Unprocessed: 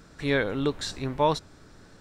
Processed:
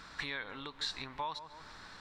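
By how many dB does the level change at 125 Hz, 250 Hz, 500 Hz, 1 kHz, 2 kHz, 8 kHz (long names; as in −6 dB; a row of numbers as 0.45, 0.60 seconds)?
−21.0, −20.5, −22.5, −11.5, −8.5, −10.5 decibels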